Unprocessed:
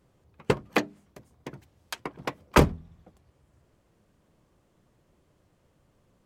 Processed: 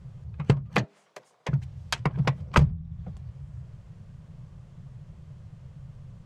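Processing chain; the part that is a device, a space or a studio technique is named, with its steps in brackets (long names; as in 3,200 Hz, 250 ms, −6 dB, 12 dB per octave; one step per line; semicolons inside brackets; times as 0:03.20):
0:00.84–0:01.49: high-pass filter 410 Hz 24 dB per octave
jukebox (low-pass filter 7,400 Hz 12 dB per octave; low shelf with overshoot 200 Hz +12 dB, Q 3; downward compressor 4 to 1, threshold −29 dBFS, peak gain reduction 22 dB)
level +8 dB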